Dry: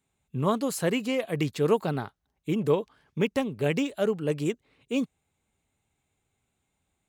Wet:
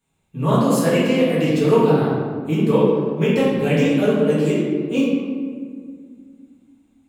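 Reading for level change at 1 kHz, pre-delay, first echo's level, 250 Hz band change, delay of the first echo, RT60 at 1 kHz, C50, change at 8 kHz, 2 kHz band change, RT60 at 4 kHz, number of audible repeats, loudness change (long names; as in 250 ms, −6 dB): +9.0 dB, 3 ms, no echo audible, +11.5 dB, no echo audible, 1.6 s, −1.5 dB, +5.5 dB, +8.0 dB, 1.0 s, no echo audible, +9.5 dB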